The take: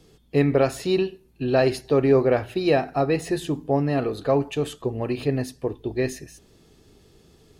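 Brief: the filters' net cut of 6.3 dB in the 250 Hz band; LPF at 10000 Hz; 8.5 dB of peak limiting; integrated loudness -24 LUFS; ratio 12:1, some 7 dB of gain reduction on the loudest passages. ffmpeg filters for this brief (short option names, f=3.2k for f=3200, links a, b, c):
-af "lowpass=10k,equalizer=f=250:t=o:g=-9,acompressor=threshold=-23dB:ratio=12,volume=10dB,alimiter=limit=-14dB:level=0:latency=1"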